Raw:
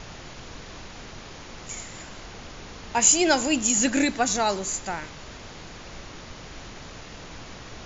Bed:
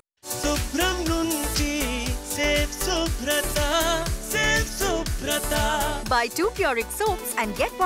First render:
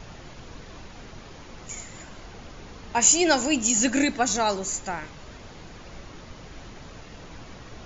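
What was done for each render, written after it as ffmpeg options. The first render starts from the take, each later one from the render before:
ffmpeg -i in.wav -af "afftdn=noise_reduction=6:noise_floor=-42" out.wav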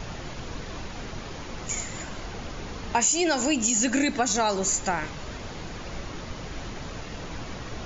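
ffmpeg -i in.wav -filter_complex "[0:a]asplit=2[link_01][link_02];[link_02]alimiter=limit=-17dB:level=0:latency=1:release=61,volume=1dB[link_03];[link_01][link_03]amix=inputs=2:normalize=0,acompressor=threshold=-21dB:ratio=4" out.wav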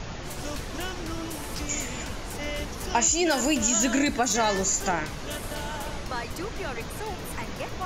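ffmpeg -i in.wav -i bed.wav -filter_complex "[1:a]volume=-12dB[link_01];[0:a][link_01]amix=inputs=2:normalize=0" out.wav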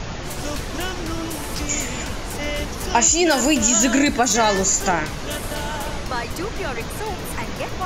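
ffmpeg -i in.wav -af "volume=6.5dB" out.wav

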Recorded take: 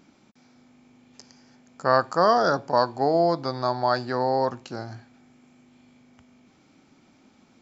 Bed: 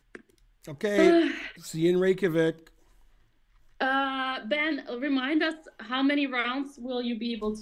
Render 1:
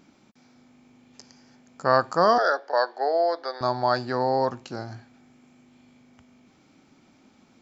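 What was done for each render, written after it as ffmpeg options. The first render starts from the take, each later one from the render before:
ffmpeg -i in.wav -filter_complex "[0:a]asettb=1/sr,asplit=3[link_01][link_02][link_03];[link_01]atrim=end=2.384[link_04];[link_02]atrim=start=2.38:end=3.61,asetpts=PTS-STARTPTS,afade=type=in:duration=0.004:curve=qsin,afade=type=out:start_time=1.226:duration=0.004:curve=qsin,highpass=frequency=450:width=0.5412,highpass=frequency=450:width=1.3066,equalizer=frequency=1000:width_type=q:width=4:gain=-6,equalizer=frequency=1700:width_type=q:width=4:gain=9,equalizer=frequency=2500:width_type=q:width=4:gain=-9,lowpass=frequency=5100:width=0.5412,lowpass=frequency=5100:width=1.3066[link_05];[link_03]atrim=start=3.606[link_06];[link_04][link_05]acrossfade=duration=0.004:curve1=hsin:curve2=qsin[link_07];[link_07][link_06]acrossfade=duration=0.004:curve1=qsin:curve2=hsin" out.wav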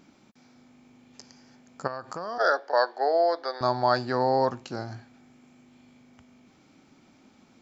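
ffmpeg -i in.wav -filter_complex "[0:a]asplit=3[link_01][link_02][link_03];[link_01]afade=type=out:start_time=1.86:duration=0.02[link_04];[link_02]acompressor=threshold=-32dB:ratio=5:attack=3.2:release=140:knee=1:detection=peak,afade=type=in:start_time=1.86:duration=0.02,afade=type=out:start_time=2.39:duration=0.02[link_05];[link_03]afade=type=in:start_time=2.39:duration=0.02[link_06];[link_04][link_05][link_06]amix=inputs=3:normalize=0" out.wav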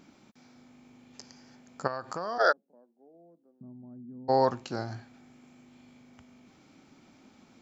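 ffmpeg -i in.wav -filter_complex "[0:a]asplit=3[link_01][link_02][link_03];[link_01]afade=type=out:start_time=2.51:duration=0.02[link_04];[link_02]asuperpass=centerf=190:order=4:qfactor=3,afade=type=in:start_time=2.51:duration=0.02,afade=type=out:start_time=4.28:duration=0.02[link_05];[link_03]afade=type=in:start_time=4.28:duration=0.02[link_06];[link_04][link_05][link_06]amix=inputs=3:normalize=0" out.wav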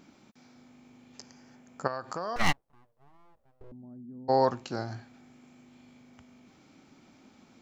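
ffmpeg -i in.wav -filter_complex "[0:a]asettb=1/sr,asplit=3[link_01][link_02][link_03];[link_01]atrim=end=1.224[link_04];[link_02]atrim=start=1.22:end=1.86,asetpts=PTS-STARTPTS,afade=type=in:duration=0.004:curve=qsin,afade=type=out:start_time=0.636:duration=0.004:curve=qsin,equalizer=frequency=4400:width_type=o:width=0.77:gain=-6[link_05];[link_03]atrim=start=1.856[link_06];[link_04][link_05]acrossfade=duration=0.004:curve1=hsin:curve2=qsin[link_07];[link_07][link_06]acrossfade=duration=0.004:curve1=qsin:curve2=hsin,asettb=1/sr,asplit=3[link_08][link_09][link_10];[link_08]atrim=end=2.364[link_11];[link_09]atrim=start=2.36:end=3.72,asetpts=PTS-STARTPTS,afade=type=in:duration=0.004:curve=qsin,afade=type=out:start_time=1.356:duration=0.004:curve=qsin,aeval=exprs='abs(val(0))':channel_layout=same[link_12];[link_10]atrim=start=3.716[link_13];[link_11][link_12]acrossfade=duration=0.004:curve1=hsin:curve2=qsin[link_14];[link_14][link_13]acrossfade=duration=0.004:curve1=qsin:curve2=hsin" out.wav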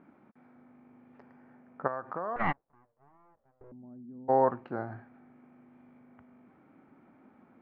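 ffmpeg -i in.wav -af "lowpass=frequency=1800:width=0.5412,lowpass=frequency=1800:width=1.3066,lowshelf=frequency=100:gain=-11" out.wav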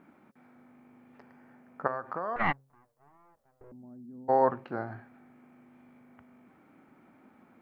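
ffmpeg -i in.wav -af "highshelf=frequency=2500:gain=10,bandreject=frequency=134.8:width_type=h:width=4,bandreject=frequency=269.6:width_type=h:width=4,bandreject=frequency=404.4:width_type=h:width=4,bandreject=frequency=539.2:width_type=h:width=4" out.wav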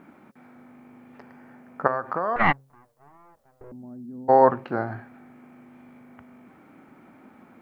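ffmpeg -i in.wav -af "volume=8dB" out.wav

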